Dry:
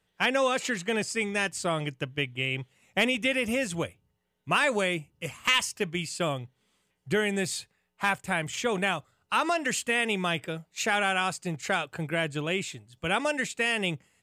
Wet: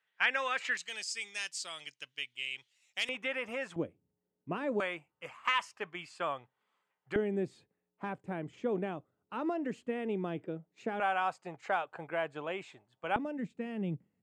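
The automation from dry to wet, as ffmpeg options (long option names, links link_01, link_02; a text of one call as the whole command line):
ffmpeg -i in.wav -af "asetnsamples=nb_out_samples=441:pad=0,asendcmd='0.77 bandpass f 4900;3.09 bandpass f 1100;3.76 bandpass f 300;4.8 bandpass f 1100;7.16 bandpass f 310;11 bandpass f 840;13.16 bandpass f 210',bandpass=frequency=1800:width_type=q:width=1.5:csg=0" out.wav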